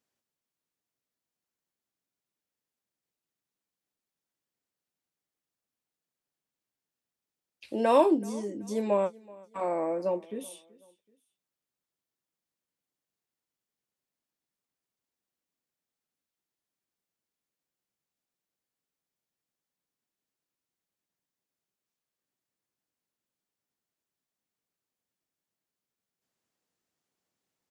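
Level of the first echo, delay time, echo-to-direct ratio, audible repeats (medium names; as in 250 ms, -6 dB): -23.0 dB, 379 ms, -22.5 dB, 2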